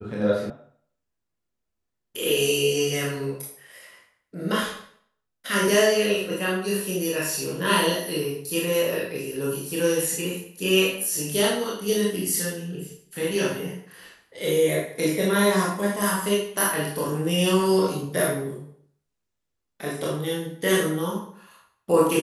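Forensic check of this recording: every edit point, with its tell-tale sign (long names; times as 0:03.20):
0:00.50: cut off before it has died away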